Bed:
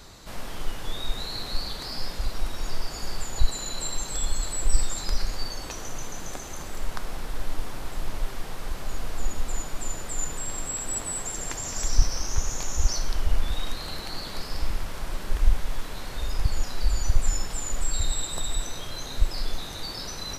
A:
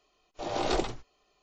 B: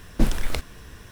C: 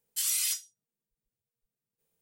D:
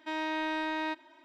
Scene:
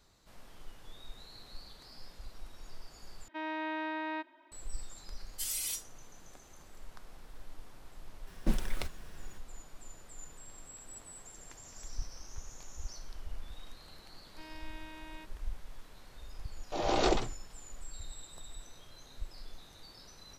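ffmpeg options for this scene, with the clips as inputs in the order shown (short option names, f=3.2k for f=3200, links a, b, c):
-filter_complex "[4:a]asplit=2[a][b];[0:a]volume=-19dB[c];[a]highpass=200,lowpass=2.9k[d];[3:a]asplit=2[e][f];[f]adelay=4.6,afreqshift=1.9[g];[e][g]amix=inputs=2:normalize=1[h];[2:a]aecho=1:1:5.4:0.34[i];[b]aeval=exprs='clip(val(0),-1,0.015)':c=same[j];[1:a]acontrast=70[k];[c]asplit=2[l][m];[l]atrim=end=3.284[n];[d]atrim=end=1.24,asetpts=PTS-STARTPTS,volume=-3.5dB[o];[m]atrim=start=4.516[p];[h]atrim=end=2.21,asetpts=PTS-STARTPTS,volume=-4dB,afade=t=in:d=0.004:c=hsin,afade=t=out:st=2.206:d=0.004:c=hsin,adelay=5220[q];[i]atrim=end=1.11,asetpts=PTS-STARTPTS,volume=-10.5dB,afade=t=in:d=0.004:c=hsin,afade=t=out:st=1.106:d=0.004:c=hsin,adelay=8270[r];[j]atrim=end=1.24,asetpts=PTS-STARTPTS,volume=-14.5dB,afade=t=in:d=0.004:c=hsin,afade=t=out:st=1.236:d=0.004:c=hsin,adelay=14310[s];[k]atrim=end=1.42,asetpts=PTS-STARTPTS,volume=-6dB,afade=t=in:d=0.004:c=hsin,afade=t=out:st=1.416:d=0.004:c=hsin,adelay=16330[t];[n][o]acrossfade=d=0.004:c1=hsin:c2=hsin[u];[u][p]acrossfade=d=0.004:c1=hsin:c2=hsin[v];[v][q][r][s][t]amix=inputs=5:normalize=0"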